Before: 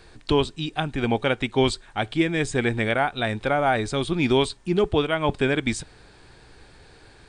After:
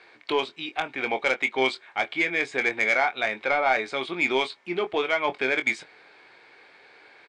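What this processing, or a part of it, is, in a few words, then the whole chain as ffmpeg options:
intercom: -filter_complex "[0:a]highpass=490,lowpass=3500,equalizer=f=2200:t=o:w=0.22:g=11.5,asoftclip=type=tanh:threshold=0.237,asplit=2[s0][s1];[s1]adelay=23,volume=0.355[s2];[s0][s2]amix=inputs=2:normalize=0"

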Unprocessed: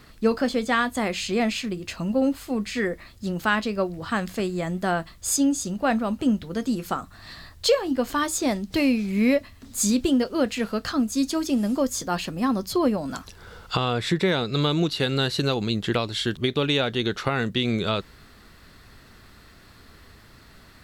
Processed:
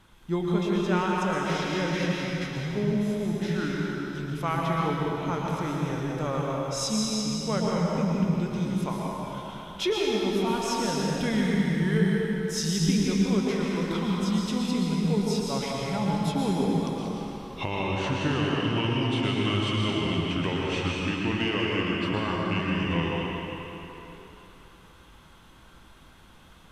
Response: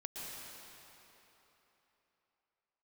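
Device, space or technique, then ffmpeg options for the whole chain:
slowed and reverbed: -filter_complex "[0:a]asetrate=34398,aresample=44100[s0];[1:a]atrim=start_sample=2205[s1];[s0][s1]afir=irnorm=-1:irlink=0,volume=0.794"

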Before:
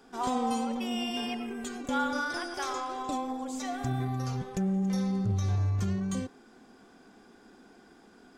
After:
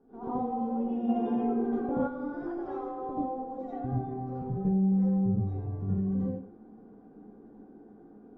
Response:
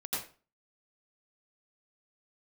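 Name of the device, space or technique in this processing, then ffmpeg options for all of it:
television next door: -filter_complex "[0:a]acompressor=threshold=0.0316:ratio=3,lowpass=480[s0];[1:a]atrim=start_sample=2205[s1];[s0][s1]afir=irnorm=-1:irlink=0,asplit=3[s2][s3][s4];[s2]afade=t=out:st=1.08:d=0.02[s5];[s3]equalizer=f=810:w=0.38:g=9,afade=t=in:st=1.08:d=0.02,afade=t=out:st=2.06:d=0.02[s6];[s4]afade=t=in:st=2.06:d=0.02[s7];[s5][s6][s7]amix=inputs=3:normalize=0,volume=1.33"

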